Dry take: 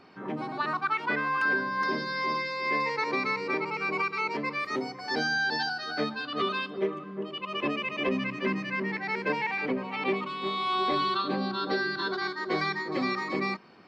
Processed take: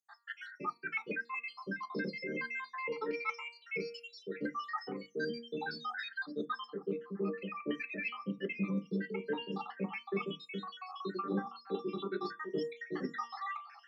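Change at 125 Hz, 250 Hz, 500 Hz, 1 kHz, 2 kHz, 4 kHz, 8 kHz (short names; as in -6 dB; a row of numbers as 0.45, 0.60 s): -4.5 dB, -6.0 dB, -7.0 dB, -12.5 dB, -11.5 dB, -14.0 dB, n/a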